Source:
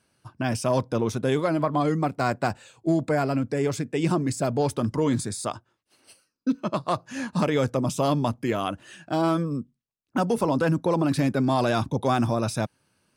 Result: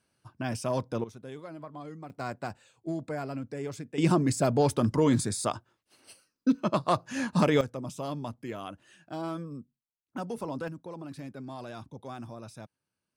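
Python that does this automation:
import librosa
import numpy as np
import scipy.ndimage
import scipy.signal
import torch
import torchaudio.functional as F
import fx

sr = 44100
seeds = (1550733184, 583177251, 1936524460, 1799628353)

y = fx.gain(x, sr, db=fx.steps((0.0, -6.5), (1.04, -19.0), (2.1, -11.0), (3.98, 0.0), (7.61, -12.0), (10.68, -18.5)))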